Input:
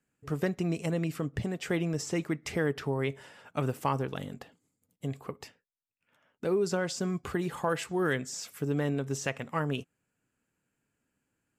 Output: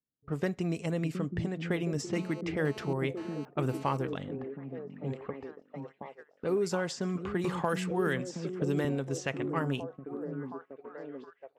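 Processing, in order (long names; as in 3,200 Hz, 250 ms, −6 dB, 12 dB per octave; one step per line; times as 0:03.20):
low-pass that shuts in the quiet parts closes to 600 Hz, open at −26.5 dBFS
echo through a band-pass that steps 719 ms, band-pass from 220 Hz, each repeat 0.7 octaves, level −3 dB
noise gate −44 dBFS, range −14 dB
0:02.13–0:03.97: phone interference −47 dBFS
0:07.44–0:08.85: multiband upward and downward compressor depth 70%
level −1.5 dB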